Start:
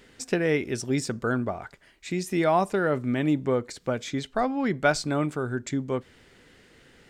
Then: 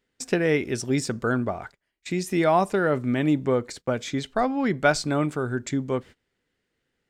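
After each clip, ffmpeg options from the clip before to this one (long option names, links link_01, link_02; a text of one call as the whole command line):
ffmpeg -i in.wav -af "agate=range=-24dB:threshold=-43dB:ratio=16:detection=peak,volume=2dB" out.wav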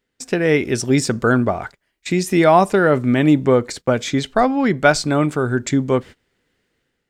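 ffmpeg -i in.wav -af "dynaudnorm=framelen=170:gausssize=5:maxgain=8dB,volume=1dB" out.wav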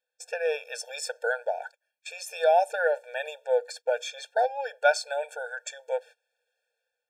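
ffmpeg -i in.wav -af "afftfilt=real='re*eq(mod(floor(b*sr/1024/460),2),1)':imag='im*eq(mod(floor(b*sr/1024/460),2),1)':win_size=1024:overlap=0.75,volume=-7dB" out.wav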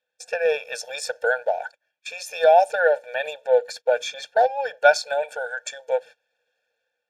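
ffmpeg -i in.wav -af "volume=6dB" -ar 32000 -c:a libspeex -b:a 36k out.spx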